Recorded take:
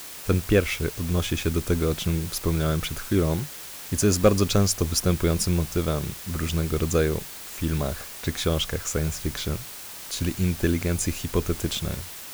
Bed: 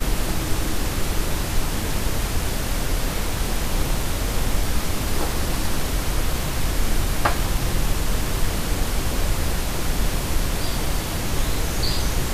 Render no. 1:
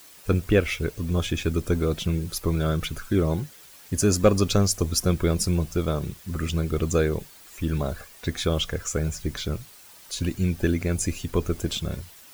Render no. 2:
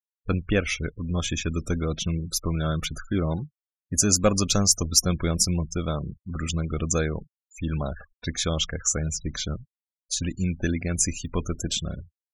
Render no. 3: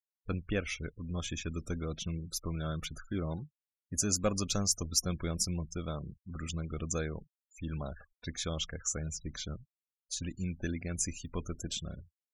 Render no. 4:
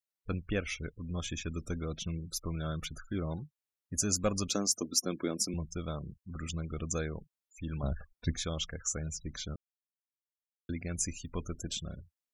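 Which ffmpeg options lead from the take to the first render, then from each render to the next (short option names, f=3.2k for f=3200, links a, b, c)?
-af "afftdn=nr=11:nf=-39"
-af "afftfilt=real='re*gte(hypot(re,im),0.0158)':imag='im*gte(hypot(re,im),0.0158)':win_size=1024:overlap=0.75,equalizer=f=100:t=o:w=0.67:g=-4,equalizer=f=400:t=o:w=0.67:g=-7,equalizer=f=6.3k:t=o:w=0.67:g=9"
-af "volume=-10dB"
-filter_complex "[0:a]asettb=1/sr,asplit=3[a][b][c];[a]atrim=end=4.494[d];[b]atrim=start=4.49:end=5.54,asetpts=PTS-STARTPTS,afade=t=in:d=0.004:c=qsin,afade=t=out:st=1.046:d=0.004:c=qsin,highpass=f=280:t=q:w=2.6[e];[c]atrim=start=5.536[f];[d][e]acrossfade=d=0.004:c1=hsin:c2=qsin[g];[g][f]acrossfade=d=0.004:c1=qsin:c2=hsin,asettb=1/sr,asplit=3[h][i][j];[h]atrim=end=7.834[k];[i]atrim=start=7.83:end=8.43,asetpts=PTS-STARTPTS,afade=t=in:d=0.004:c=qsin,afade=t=out:st=0.596:d=0.004:c=qsin,lowshelf=f=320:g=11[l];[j]atrim=start=8.426[m];[k][l]acrossfade=d=0.004:c1=hsin:c2=qsin[n];[n][m]acrossfade=d=0.004:c1=qsin:c2=hsin,asplit=3[o][p][q];[o]atrim=end=9.56,asetpts=PTS-STARTPTS,afade=t=out:st=9.556:d=0.004:c=hsin[r];[p]atrim=start=9.56:end=10.69,asetpts=PTS-STARTPTS,volume=0[s];[q]atrim=start=10.69,asetpts=PTS-STARTPTS,afade=t=in:d=0.004:c=hsin[t];[r][s][t]concat=n=3:v=0:a=1"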